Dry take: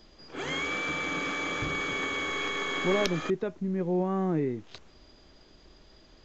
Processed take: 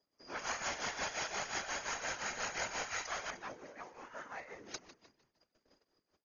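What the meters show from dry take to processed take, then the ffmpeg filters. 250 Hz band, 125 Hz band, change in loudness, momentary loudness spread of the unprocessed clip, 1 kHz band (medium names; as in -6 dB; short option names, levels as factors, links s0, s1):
-23.0 dB, -23.0 dB, -10.0 dB, 6 LU, -6.5 dB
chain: -filter_complex "[0:a]bandreject=f=82.4:t=h:w=4,bandreject=f=164.8:t=h:w=4,bandreject=f=247.2:t=h:w=4,bandreject=f=329.6:t=h:w=4,bandreject=f=412:t=h:w=4,bandreject=f=494.4:t=h:w=4,bandreject=f=576.8:t=h:w=4,bandreject=f=659.2:t=h:w=4,bandreject=f=741.6:t=h:w=4,bandreject=f=824:t=h:w=4,agate=range=0.0447:threshold=0.00282:ratio=16:detection=peak,afftfilt=real='re*lt(hypot(re,im),0.0398)':imag='im*lt(hypot(re,im),0.0398)':win_size=1024:overlap=0.75,acrossover=split=230 3100:gain=0.158 1 0.0708[s0][s1][s2];[s0][s1][s2]amix=inputs=3:normalize=0,acrossover=split=140[s3][s4];[s4]asplit=6[s5][s6][s7][s8][s9][s10];[s6]adelay=151,afreqshift=-35,volume=0.211[s11];[s7]adelay=302,afreqshift=-70,volume=0.101[s12];[s8]adelay=453,afreqshift=-105,volume=0.0484[s13];[s9]adelay=604,afreqshift=-140,volume=0.0234[s14];[s10]adelay=755,afreqshift=-175,volume=0.0112[s15];[s5][s11][s12][s13][s14][s15]amix=inputs=6:normalize=0[s16];[s3][s16]amix=inputs=2:normalize=0,aeval=exprs='0.0316*(cos(1*acos(clip(val(0)/0.0316,-1,1)))-cos(1*PI/2))+0.00891*(cos(2*acos(clip(val(0)/0.0316,-1,1)))-cos(2*PI/2))':c=same,tremolo=f=5.7:d=0.71,afftfilt=real='hypot(re,im)*cos(2*PI*random(0))':imag='hypot(re,im)*sin(2*PI*random(1))':win_size=512:overlap=0.75,aexciter=amount=10.6:drive=7.6:freq=5300,volume=3.76" -ar 48000 -c:a ac3 -b:a 48k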